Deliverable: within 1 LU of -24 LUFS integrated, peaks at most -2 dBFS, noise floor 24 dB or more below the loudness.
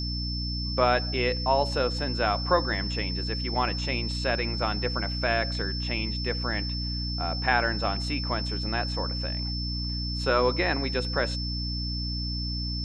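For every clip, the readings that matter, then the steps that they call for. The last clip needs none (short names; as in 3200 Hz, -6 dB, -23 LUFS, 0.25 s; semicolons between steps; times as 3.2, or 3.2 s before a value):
hum 60 Hz; harmonics up to 300 Hz; hum level -29 dBFS; steady tone 5300 Hz; tone level -33 dBFS; loudness -27.5 LUFS; peak -7.5 dBFS; loudness target -24.0 LUFS
-> notches 60/120/180/240/300 Hz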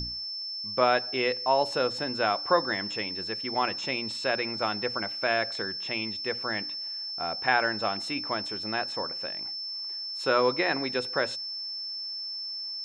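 hum none; steady tone 5300 Hz; tone level -33 dBFS
-> notch 5300 Hz, Q 30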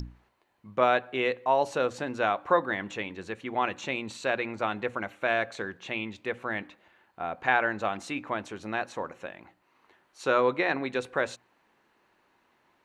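steady tone none; loudness -29.5 LUFS; peak -8.0 dBFS; loudness target -24.0 LUFS
-> gain +5.5 dB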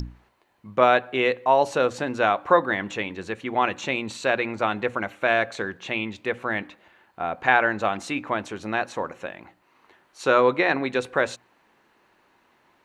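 loudness -24.0 LUFS; peak -2.5 dBFS; noise floor -64 dBFS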